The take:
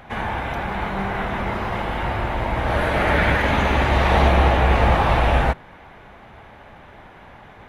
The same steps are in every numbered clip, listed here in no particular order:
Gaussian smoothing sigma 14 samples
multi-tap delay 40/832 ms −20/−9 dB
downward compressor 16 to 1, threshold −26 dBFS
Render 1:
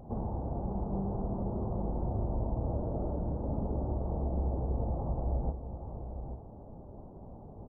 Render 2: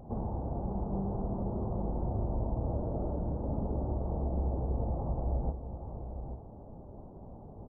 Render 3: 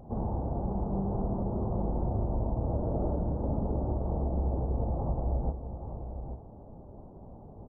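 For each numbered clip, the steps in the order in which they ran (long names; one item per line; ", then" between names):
downward compressor, then Gaussian smoothing, then multi-tap delay
downward compressor, then multi-tap delay, then Gaussian smoothing
Gaussian smoothing, then downward compressor, then multi-tap delay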